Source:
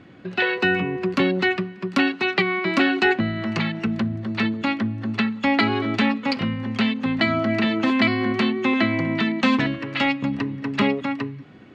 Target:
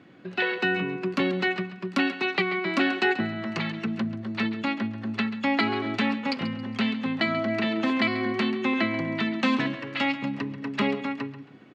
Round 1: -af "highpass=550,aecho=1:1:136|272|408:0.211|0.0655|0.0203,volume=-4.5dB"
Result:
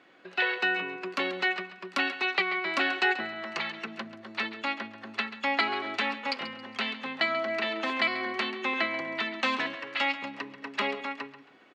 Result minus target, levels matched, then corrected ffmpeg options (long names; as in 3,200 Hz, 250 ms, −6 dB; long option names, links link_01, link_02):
125 Hz band −16.0 dB
-af "highpass=140,aecho=1:1:136|272|408:0.211|0.0655|0.0203,volume=-4.5dB"